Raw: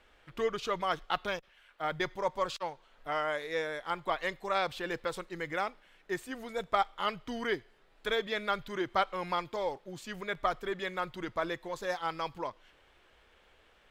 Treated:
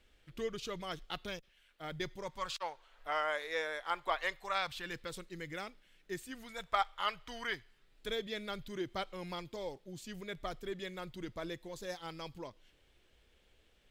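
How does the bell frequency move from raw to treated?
bell -14 dB 2.3 oct
2.2 s 1000 Hz
2.7 s 160 Hz
4.17 s 160 Hz
5.13 s 910 Hz
6.21 s 910 Hz
6.78 s 250 Hz
7.34 s 250 Hz
8.07 s 1100 Hz

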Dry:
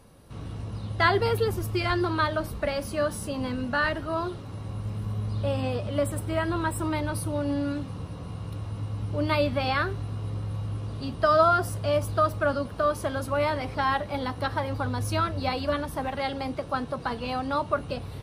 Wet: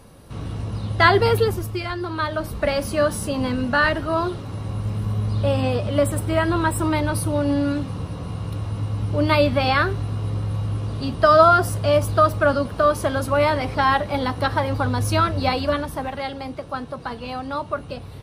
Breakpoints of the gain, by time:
1.39 s +7 dB
1.95 s -3 dB
2.7 s +7 dB
15.5 s +7 dB
16.37 s 0 dB

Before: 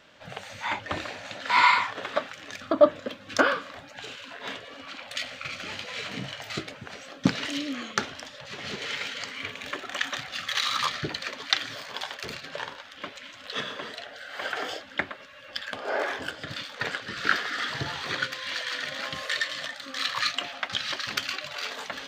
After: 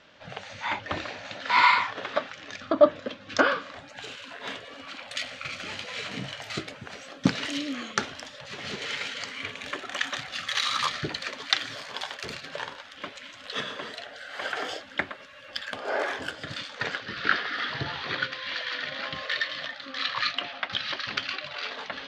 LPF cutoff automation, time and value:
LPF 24 dB/oct
3.6 s 6400 Hz
4.02 s 12000 Hz
16.42 s 12000 Hz
17.2 s 4700 Hz

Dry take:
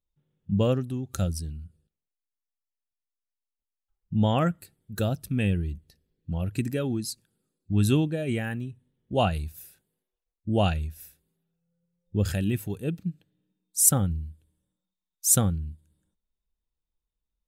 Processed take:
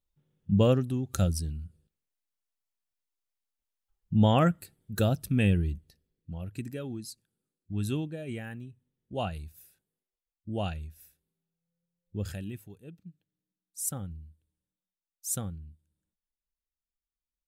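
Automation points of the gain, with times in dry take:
5.68 s +1 dB
6.36 s -9 dB
12.29 s -9 dB
12.82 s -18 dB
14.26 s -12 dB

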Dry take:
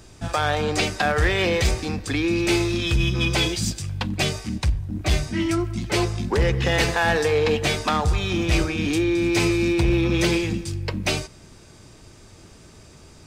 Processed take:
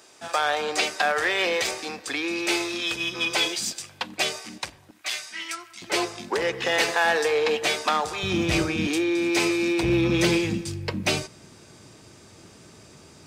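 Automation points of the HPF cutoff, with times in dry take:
490 Hz
from 4.91 s 1400 Hz
from 5.82 s 420 Hz
from 8.23 s 120 Hz
from 8.87 s 320 Hz
from 9.83 s 120 Hz

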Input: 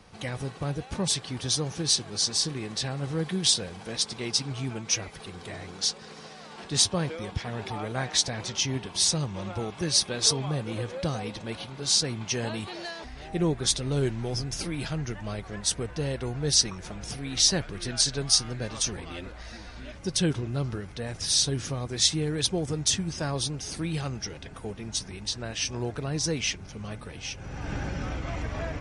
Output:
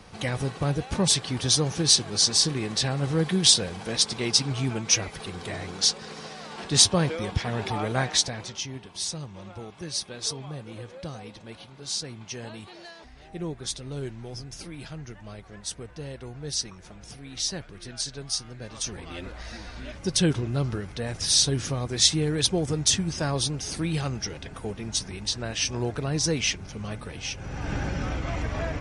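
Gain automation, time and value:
7.99 s +5 dB
8.7 s -7.5 dB
18.54 s -7.5 dB
19.34 s +3 dB

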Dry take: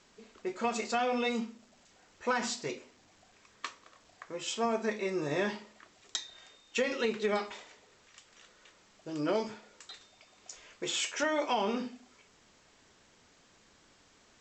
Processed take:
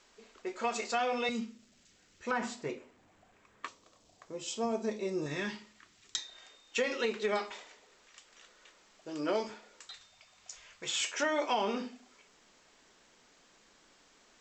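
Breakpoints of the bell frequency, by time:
bell -11.5 dB 1.6 oct
140 Hz
from 1.29 s 810 Hz
from 2.31 s 5200 Hz
from 3.68 s 1700 Hz
from 5.26 s 600 Hz
from 6.18 s 110 Hz
from 9.87 s 330 Hz
from 11.01 s 88 Hz

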